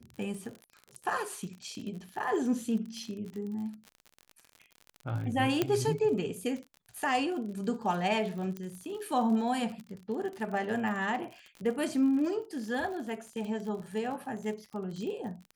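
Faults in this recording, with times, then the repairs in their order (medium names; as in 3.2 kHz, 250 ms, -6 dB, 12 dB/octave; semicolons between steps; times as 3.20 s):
crackle 46 per s -38 dBFS
5.62 s: pop -13 dBFS
8.57 s: pop -25 dBFS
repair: de-click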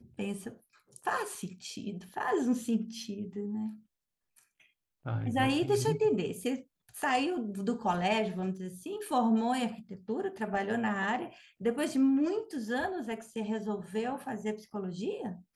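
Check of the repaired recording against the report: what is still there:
8.57 s: pop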